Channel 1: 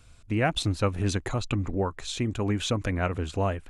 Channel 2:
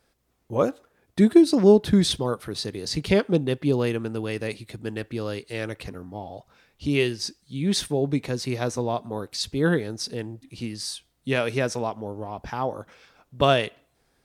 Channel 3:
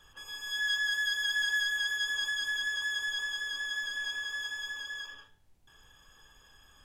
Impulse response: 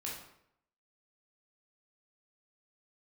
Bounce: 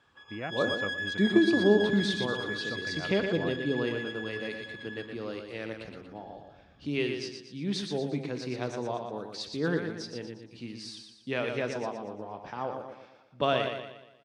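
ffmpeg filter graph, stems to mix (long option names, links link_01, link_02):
-filter_complex "[0:a]volume=-12dB[link_01];[1:a]volume=-9dB,asplit=3[link_02][link_03][link_04];[link_03]volume=-8.5dB[link_05];[link_04]volume=-4.5dB[link_06];[2:a]asubboost=boost=11.5:cutoff=210,adynamicsmooth=sensitivity=4:basefreq=2600,volume=-2dB[link_07];[3:a]atrim=start_sample=2205[link_08];[link_05][link_08]afir=irnorm=-1:irlink=0[link_09];[link_06]aecho=0:1:118|236|354|472|590|708:1|0.45|0.202|0.0911|0.041|0.0185[link_10];[link_01][link_02][link_07][link_09][link_10]amix=inputs=5:normalize=0,highpass=150,lowpass=4800"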